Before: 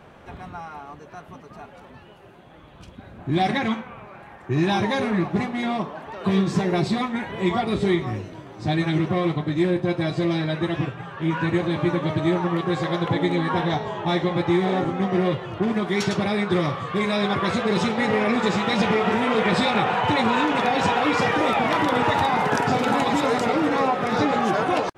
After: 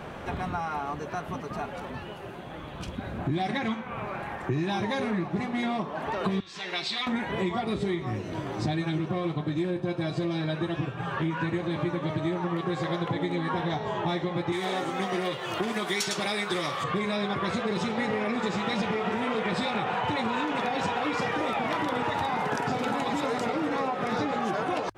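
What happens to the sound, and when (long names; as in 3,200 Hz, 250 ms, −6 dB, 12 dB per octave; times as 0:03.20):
0:06.40–0:07.07: resonant band-pass 3,400 Hz, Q 1.5
0:08.75–0:11.14: notch filter 2,000 Hz, Q 9.2
0:14.52–0:16.84: RIAA equalisation recording
whole clip: downward compressor, threshold −35 dBFS; mains-hum notches 50/100 Hz; level +8 dB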